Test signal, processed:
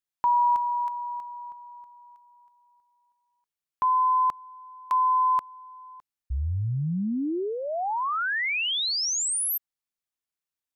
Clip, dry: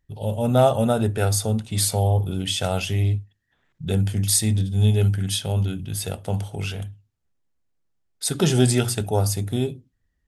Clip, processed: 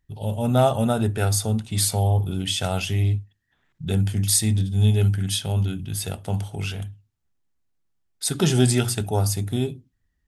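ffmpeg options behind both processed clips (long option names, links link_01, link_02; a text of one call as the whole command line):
ffmpeg -i in.wav -af "equalizer=frequency=520:width_type=o:width=0.54:gain=-5" out.wav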